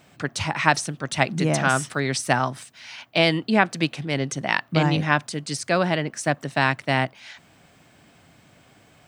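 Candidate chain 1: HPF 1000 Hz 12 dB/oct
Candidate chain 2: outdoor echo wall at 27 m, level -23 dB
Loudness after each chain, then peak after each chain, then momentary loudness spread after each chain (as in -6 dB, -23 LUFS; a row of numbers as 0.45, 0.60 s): -26.5, -23.0 LUFS; -3.5, -1.0 dBFS; 10, 9 LU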